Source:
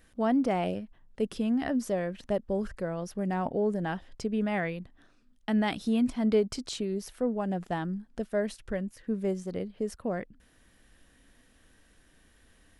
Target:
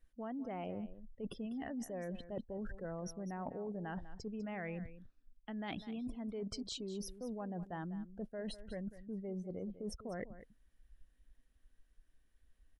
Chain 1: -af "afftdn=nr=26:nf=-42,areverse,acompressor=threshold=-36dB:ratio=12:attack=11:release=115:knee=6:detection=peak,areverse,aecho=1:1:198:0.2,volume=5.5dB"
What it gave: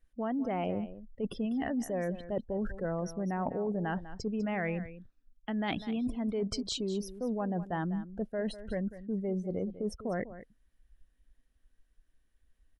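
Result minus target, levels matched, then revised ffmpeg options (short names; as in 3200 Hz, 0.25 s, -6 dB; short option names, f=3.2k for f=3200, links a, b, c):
compressor: peak gain reduction -9.5 dB
-af "afftdn=nr=26:nf=-42,areverse,acompressor=threshold=-46.5dB:ratio=12:attack=11:release=115:knee=6:detection=peak,areverse,aecho=1:1:198:0.2,volume=5.5dB"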